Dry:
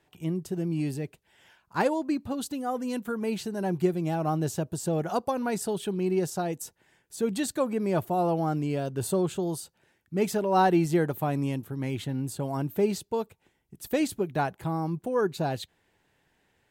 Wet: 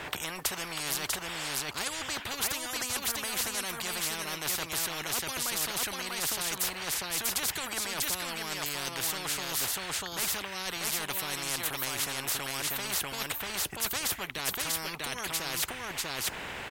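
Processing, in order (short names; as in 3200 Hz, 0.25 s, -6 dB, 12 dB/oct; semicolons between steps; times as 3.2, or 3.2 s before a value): bell 1500 Hz +11.5 dB 2.6 oct; reverse; compressor, threshold -30 dBFS, peak gain reduction 18.5 dB; reverse; echo 0.643 s -5.5 dB; spectral compressor 10:1; gain +4.5 dB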